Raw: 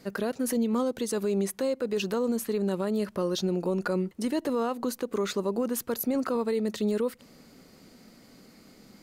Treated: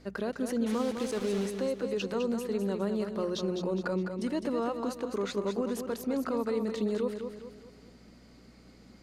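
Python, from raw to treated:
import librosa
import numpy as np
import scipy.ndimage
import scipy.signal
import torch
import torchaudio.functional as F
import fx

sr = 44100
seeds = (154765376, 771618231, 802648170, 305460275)

y = fx.hum_notches(x, sr, base_hz=60, count=3)
y = fx.add_hum(y, sr, base_hz=60, snr_db=25)
y = fx.quant_dither(y, sr, seeds[0], bits=6, dither='none', at=(0.66, 1.47))
y = fx.air_absorb(y, sr, metres=53.0)
y = fx.echo_feedback(y, sr, ms=206, feedback_pct=42, wet_db=-7.0)
y = F.gain(torch.from_numpy(y), -3.5).numpy()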